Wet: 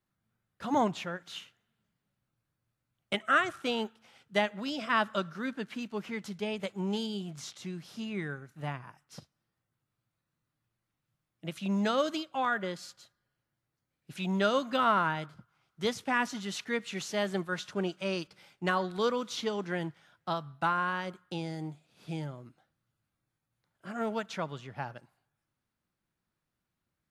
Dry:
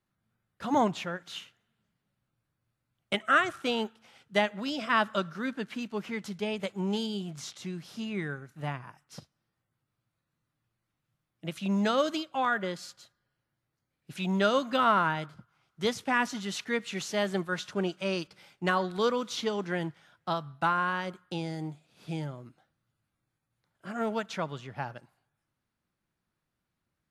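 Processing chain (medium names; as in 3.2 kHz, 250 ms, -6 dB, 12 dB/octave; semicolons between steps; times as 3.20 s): trim -2 dB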